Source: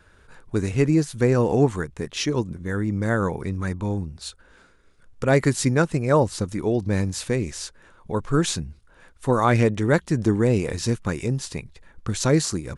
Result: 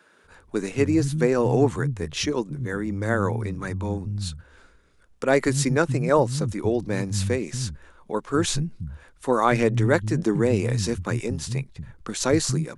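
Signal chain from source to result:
multiband delay without the direct sound highs, lows 240 ms, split 180 Hz

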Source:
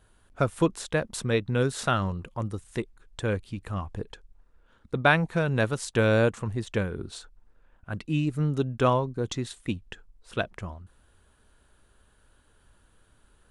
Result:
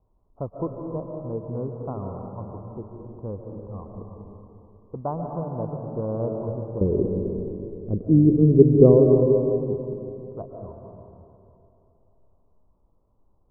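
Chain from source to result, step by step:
Butterworth low-pass 1,100 Hz 72 dB per octave
0:06.81–0:09.06: low shelf with overshoot 620 Hz +13.5 dB, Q 3
comb and all-pass reverb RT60 2.9 s, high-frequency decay 0.7×, pre-delay 100 ms, DRR 1.5 dB
level −6 dB

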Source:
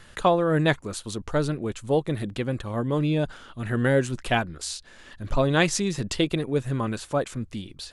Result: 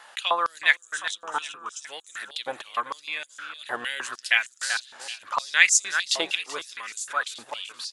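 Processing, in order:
0:00.76–0:01.84: phaser with its sweep stopped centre 3,000 Hz, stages 8
repeating echo 384 ms, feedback 44%, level −10 dB
high-pass on a step sequencer 6.5 Hz 810–6,900 Hz
level +1 dB

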